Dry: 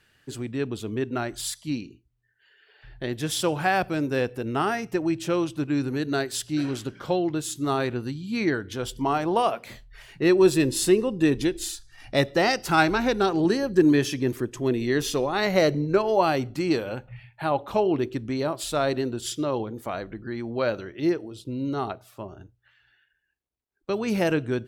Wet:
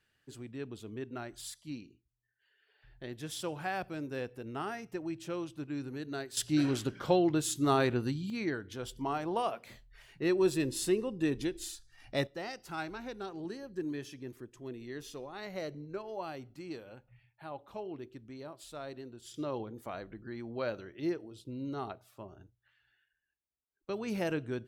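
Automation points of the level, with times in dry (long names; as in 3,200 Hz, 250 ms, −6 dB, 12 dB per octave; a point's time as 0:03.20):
−13 dB
from 0:06.37 −2 dB
from 0:08.30 −10 dB
from 0:12.27 −19 dB
from 0:19.34 −10 dB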